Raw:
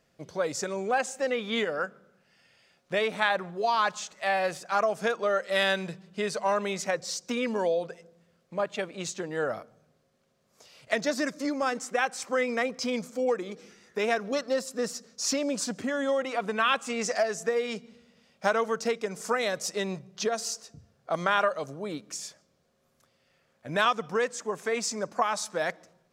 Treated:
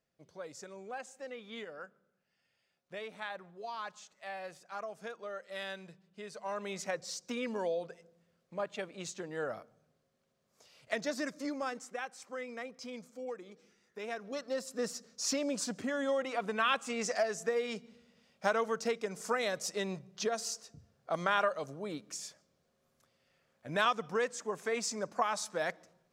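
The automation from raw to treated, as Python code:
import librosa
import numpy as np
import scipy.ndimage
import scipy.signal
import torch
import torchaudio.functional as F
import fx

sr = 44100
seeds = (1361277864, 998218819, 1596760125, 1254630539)

y = fx.gain(x, sr, db=fx.line((6.29, -16.0), (6.78, -7.5), (11.54, -7.5), (12.11, -14.5), (14.0, -14.5), (14.81, -5.0)))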